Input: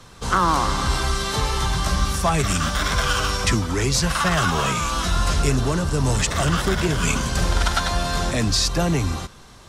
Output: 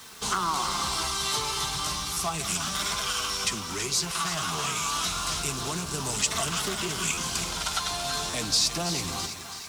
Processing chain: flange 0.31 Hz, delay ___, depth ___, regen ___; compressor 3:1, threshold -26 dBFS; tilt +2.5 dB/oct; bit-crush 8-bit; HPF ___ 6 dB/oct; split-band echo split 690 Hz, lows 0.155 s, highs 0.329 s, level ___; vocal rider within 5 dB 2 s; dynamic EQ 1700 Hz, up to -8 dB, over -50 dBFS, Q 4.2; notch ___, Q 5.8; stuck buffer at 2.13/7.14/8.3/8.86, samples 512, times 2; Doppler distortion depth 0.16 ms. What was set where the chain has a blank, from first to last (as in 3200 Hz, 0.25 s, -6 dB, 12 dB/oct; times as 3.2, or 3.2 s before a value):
4.4 ms, 2.7 ms, +53%, 45 Hz, -10 dB, 550 Hz